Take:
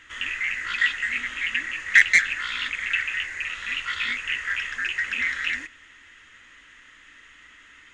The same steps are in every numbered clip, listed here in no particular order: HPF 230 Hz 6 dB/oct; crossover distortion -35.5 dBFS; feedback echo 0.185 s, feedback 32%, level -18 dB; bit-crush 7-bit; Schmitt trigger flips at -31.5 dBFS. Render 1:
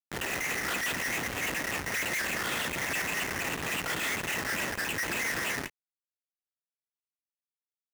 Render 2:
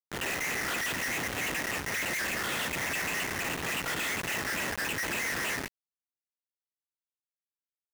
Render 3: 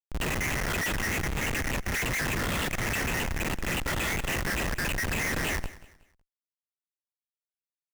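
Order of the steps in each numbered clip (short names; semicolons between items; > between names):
Schmitt trigger > bit-crush > feedback echo > crossover distortion > HPF; Schmitt trigger > feedback echo > crossover distortion > HPF > bit-crush; bit-crush > HPF > crossover distortion > Schmitt trigger > feedback echo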